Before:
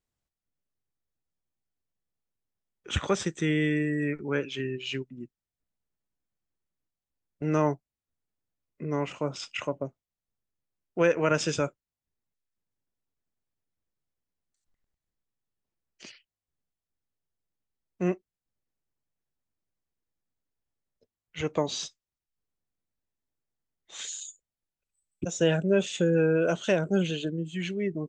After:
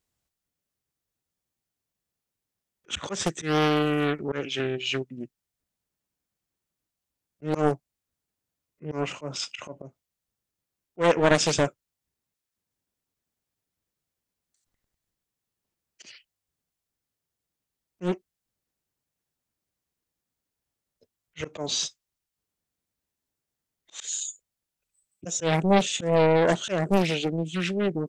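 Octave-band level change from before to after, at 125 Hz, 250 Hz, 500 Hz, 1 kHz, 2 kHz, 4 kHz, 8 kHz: +1.0, +1.0, +2.0, +7.0, +2.5, +6.0, +6.5 decibels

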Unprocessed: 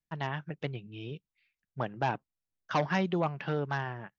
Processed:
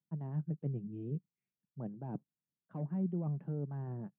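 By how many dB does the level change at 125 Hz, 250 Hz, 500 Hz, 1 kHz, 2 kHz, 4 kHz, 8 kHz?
−1.0 dB, −2.5 dB, −12.0 dB, −21.0 dB, below −30 dB, below −35 dB, can't be measured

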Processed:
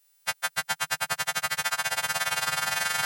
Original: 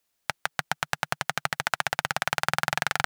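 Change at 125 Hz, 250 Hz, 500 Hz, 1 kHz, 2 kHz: −7.5, −7.0, −3.5, −2.0, 0.0 decibels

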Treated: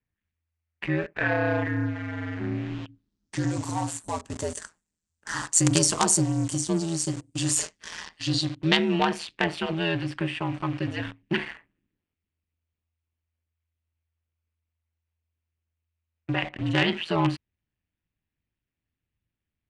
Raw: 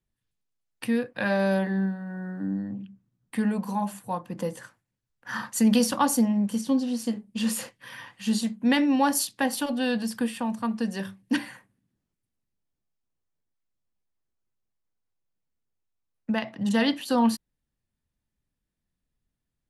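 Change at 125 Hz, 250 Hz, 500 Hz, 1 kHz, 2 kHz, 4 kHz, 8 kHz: +7.5, −4.0, 0.0, −1.0, +3.0, +4.5, +7.0 decibels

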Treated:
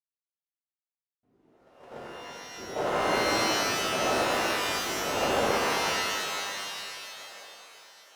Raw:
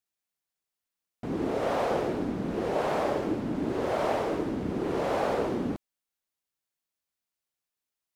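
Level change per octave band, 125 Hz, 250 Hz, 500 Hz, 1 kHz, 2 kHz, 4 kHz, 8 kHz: −5.5, −6.0, −1.5, +3.5, +10.0, +15.5, +17.0 decibels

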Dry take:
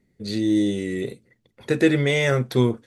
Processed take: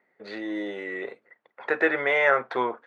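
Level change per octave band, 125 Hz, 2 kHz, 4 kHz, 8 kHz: −27.5 dB, +3.5 dB, −10.0 dB, below −20 dB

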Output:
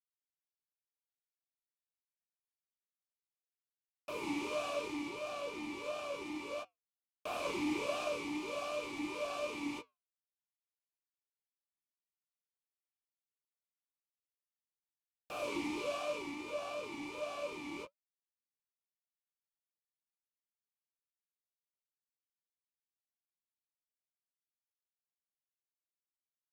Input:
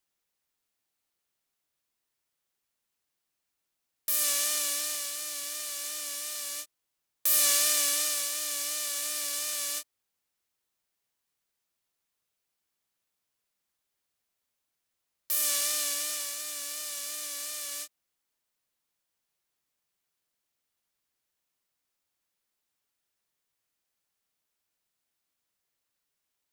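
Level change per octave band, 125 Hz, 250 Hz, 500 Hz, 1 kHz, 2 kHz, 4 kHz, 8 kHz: can't be measured, +14.5 dB, +7.0 dB, +2.0 dB, −4.5 dB, −14.5 dB, −27.0 dB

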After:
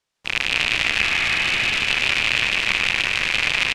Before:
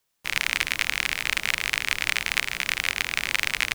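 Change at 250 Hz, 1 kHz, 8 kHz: +8.5, +5.0, −1.0 decibels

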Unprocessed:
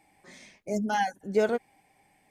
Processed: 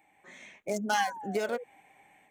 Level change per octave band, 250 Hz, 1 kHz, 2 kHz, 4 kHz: −5.5, −1.5, +1.0, +3.0 decibels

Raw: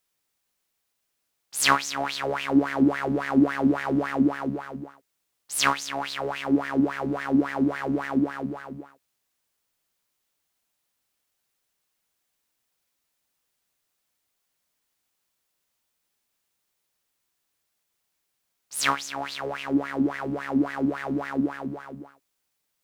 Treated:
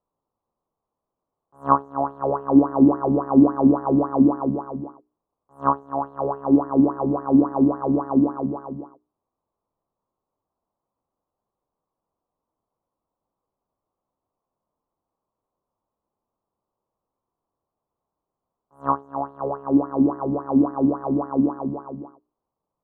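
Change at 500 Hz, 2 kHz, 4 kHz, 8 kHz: +6.0 dB, below −15 dB, below −40 dB, below −40 dB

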